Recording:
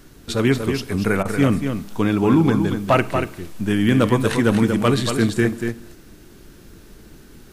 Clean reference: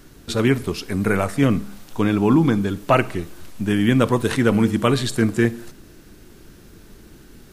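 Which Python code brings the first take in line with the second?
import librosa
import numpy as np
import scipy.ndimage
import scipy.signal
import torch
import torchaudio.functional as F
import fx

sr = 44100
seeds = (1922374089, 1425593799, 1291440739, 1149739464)

y = fx.fix_declip(x, sr, threshold_db=-6.5)
y = fx.fix_interpolate(y, sr, at_s=(1.23,), length_ms=20.0)
y = fx.fix_echo_inverse(y, sr, delay_ms=235, level_db=-7.0)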